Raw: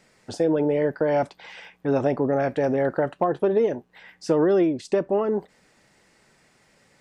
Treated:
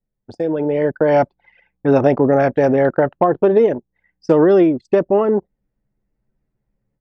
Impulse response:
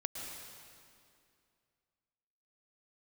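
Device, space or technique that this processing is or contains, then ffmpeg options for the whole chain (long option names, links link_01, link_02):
voice memo with heavy noise removal: -af "anlmdn=15.8,dynaudnorm=framelen=580:gausssize=3:maxgain=11dB"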